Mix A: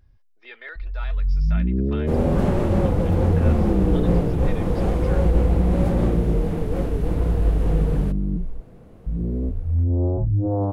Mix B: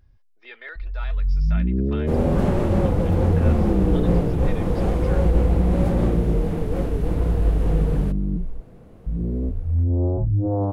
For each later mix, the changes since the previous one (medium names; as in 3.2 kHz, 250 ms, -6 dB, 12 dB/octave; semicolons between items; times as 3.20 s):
no change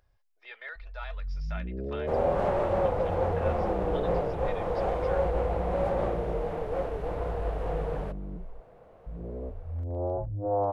speech -4.0 dB; second sound: add low-pass 1.6 kHz 6 dB/octave; master: add resonant low shelf 400 Hz -13.5 dB, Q 1.5